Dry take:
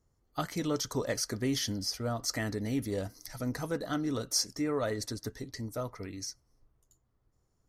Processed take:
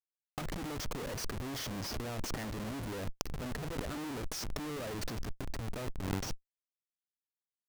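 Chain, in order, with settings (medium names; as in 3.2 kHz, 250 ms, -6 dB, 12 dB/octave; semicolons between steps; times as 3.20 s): crackle 380 per s -46 dBFS; Schmitt trigger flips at -37.5 dBFS; compressor with a negative ratio -42 dBFS, ratio -0.5; trim +7.5 dB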